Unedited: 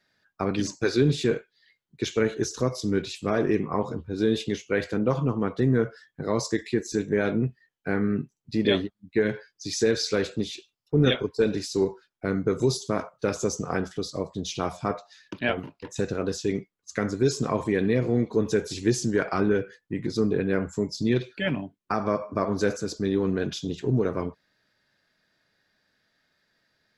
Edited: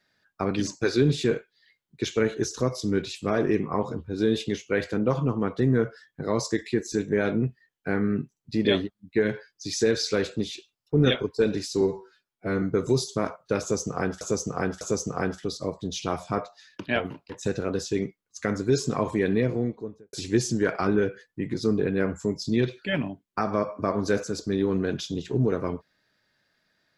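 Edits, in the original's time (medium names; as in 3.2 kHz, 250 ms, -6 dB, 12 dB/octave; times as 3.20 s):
11.81–12.35 s: stretch 1.5×
13.34–13.94 s: loop, 3 plays
17.84–18.66 s: studio fade out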